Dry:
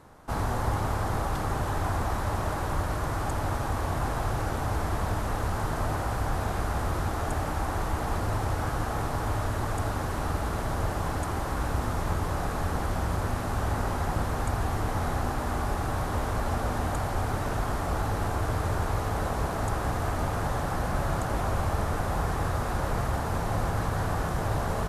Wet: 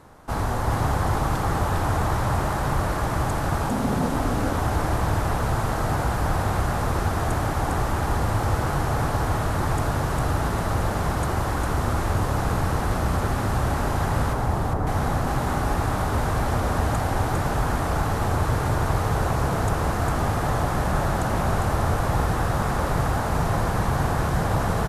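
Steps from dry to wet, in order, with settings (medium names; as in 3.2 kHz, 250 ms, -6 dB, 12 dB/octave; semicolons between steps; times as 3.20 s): 3.69–4.13 s: frequency shift -300 Hz; 14.33–14.87 s: Chebyshev low-pass 970 Hz, order 2; frequency-shifting echo 403 ms, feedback 33%, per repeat +34 Hz, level -3.5 dB; trim +3.5 dB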